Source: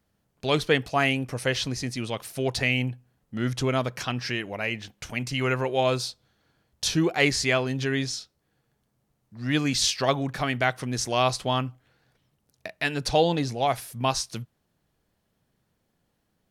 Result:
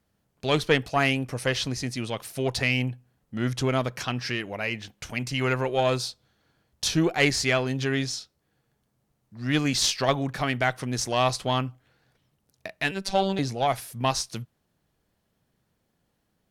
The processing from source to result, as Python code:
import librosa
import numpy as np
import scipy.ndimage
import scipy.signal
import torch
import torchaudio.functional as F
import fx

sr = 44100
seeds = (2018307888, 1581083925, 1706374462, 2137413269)

y = fx.cheby_harmonics(x, sr, harmonics=(4,), levels_db=(-22,), full_scale_db=-6.5)
y = fx.robotise(y, sr, hz=193.0, at=(12.91, 13.39))